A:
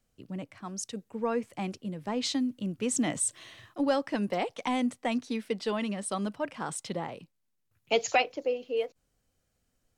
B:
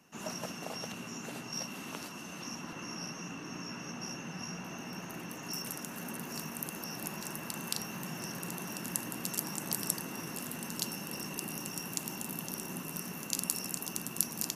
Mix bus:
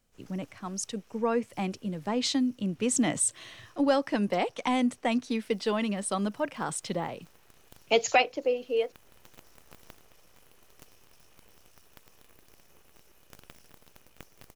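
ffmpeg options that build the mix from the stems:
ffmpeg -i stem1.wav -i stem2.wav -filter_complex "[0:a]volume=2.5dB,asplit=2[link_01][link_02];[1:a]aeval=exprs='abs(val(0))':channel_layout=same,volume=-17.5dB,asplit=2[link_03][link_04];[link_04]volume=-13.5dB[link_05];[link_02]apad=whole_len=646314[link_06];[link_03][link_06]sidechaincompress=threshold=-28dB:ratio=8:attack=16:release=539[link_07];[link_05]aecho=0:1:216:1[link_08];[link_01][link_07][link_08]amix=inputs=3:normalize=0" out.wav

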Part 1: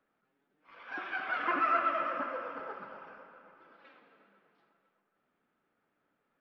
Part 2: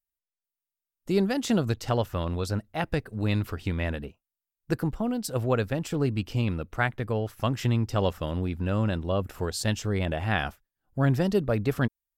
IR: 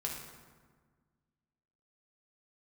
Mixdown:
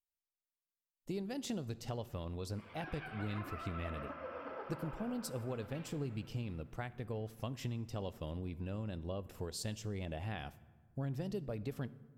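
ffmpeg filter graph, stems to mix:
-filter_complex "[0:a]acompressor=threshold=-55dB:ratio=1.5,alimiter=level_in=11dB:limit=-24dB:level=0:latency=1:release=294,volume=-11dB,dynaudnorm=framelen=350:gausssize=17:maxgain=12.5dB,adelay=1900,volume=-0.5dB[link_01];[1:a]acompressor=threshold=-27dB:ratio=5,volume=-10.5dB,asplit=2[link_02][link_03];[link_03]volume=-14dB[link_04];[2:a]atrim=start_sample=2205[link_05];[link_04][link_05]afir=irnorm=-1:irlink=0[link_06];[link_01][link_02][link_06]amix=inputs=3:normalize=0,equalizer=frequency=1400:width=1.6:gain=-6.5"

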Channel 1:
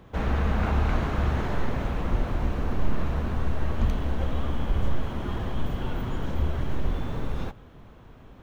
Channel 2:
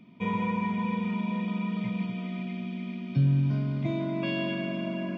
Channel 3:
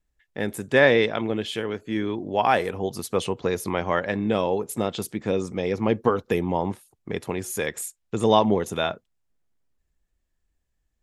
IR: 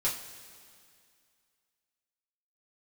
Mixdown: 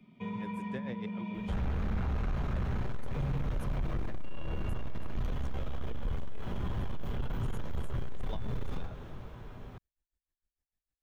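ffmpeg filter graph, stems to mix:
-filter_complex "[0:a]adelay=1350,volume=-4dB,asplit=2[link_01][link_02];[link_02]volume=-4.5dB[link_03];[1:a]volume=-11dB,asplit=2[link_04][link_05];[link_05]volume=-3dB[link_06];[2:a]aeval=exprs='val(0)*pow(10,-21*(0.5-0.5*cos(2*PI*6.6*n/s))/20)':channel_layout=same,volume=-11dB[link_07];[3:a]atrim=start_sample=2205[link_08];[link_03][link_06]amix=inputs=2:normalize=0[link_09];[link_09][link_08]afir=irnorm=-1:irlink=0[link_10];[link_01][link_04][link_07][link_10]amix=inputs=4:normalize=0,acrossover=split=200|1700[link_11][link_12][link_13];[link_11]acompressor=threshold=-25dB:ratio=4[link_14];[link_12]acompressor=threshold=-41dB:ratio=4[link_15];[link_13]acompressor=threshold=-52dB:ratio=4[link_16];[link_14][link_15][link_16]amix=inputs=3:normalize=0,asoftclip=type=tanh:threshold=-26dB"

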